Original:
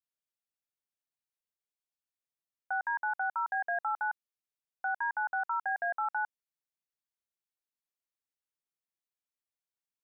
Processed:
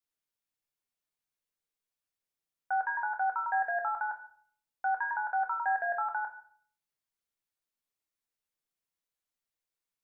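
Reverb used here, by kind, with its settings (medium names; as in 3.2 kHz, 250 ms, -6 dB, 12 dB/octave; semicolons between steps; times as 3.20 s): simulated room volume 75 m³, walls mixed, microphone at 0.49 m; trim +1 dB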